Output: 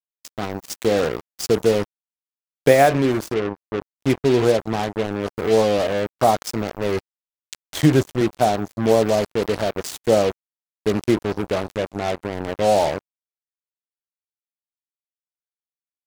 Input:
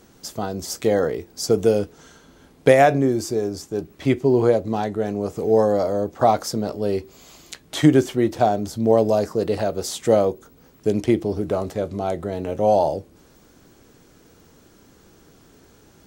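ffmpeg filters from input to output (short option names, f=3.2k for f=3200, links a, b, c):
-filter_complex "[0:a]asettb=1/sr,asplit=3[a][b][c];[a]atrim=end=3.344[d];[b]atrim=start=3.34:end=3.81,asetpts=PTS-STARTPTS,afade=t=in:d=0.004:c=qsin,afade=t=out:st=0.466:d=0.004:c=qsin,lowpass=1.5k[e];[c]atrim=start=3.806[f];[d][e]acrossfade=d=0.004:c1=hsin:c2=qsin[g];[g][f]acrossfade=d=0.004:c1=qsin:c2=hsin,asettb=1/sr,asplit=3[h][i][j];[h]atrim=end=6.644[k];[i]atrim=start=6.64:end=8.21,asetpts=PTS-STARTPTS,afade=t=in:d=0.004:c=qsin,afade=t=out:st=1.566:d=0.004:c=qsin,asubboost=boost=6.5:cutoff=120[l];[j]atrim=start=8.206[m];[k][l]acrossfade=d=0.004:c1=hsin:c2=qsin[n];[n][m]acrossfade=d=0.004:c1=qsin:c2=hsin,acrusher=bits=3:mix=0:aa=0.5"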